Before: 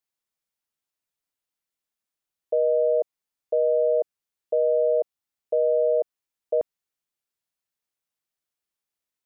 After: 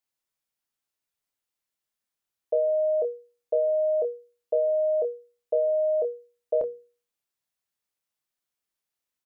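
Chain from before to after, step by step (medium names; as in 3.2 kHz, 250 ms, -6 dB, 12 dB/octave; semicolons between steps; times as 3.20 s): hum notches 60/120/180/240/300/360/420/480 Hz; doubling 27 ms -9 dB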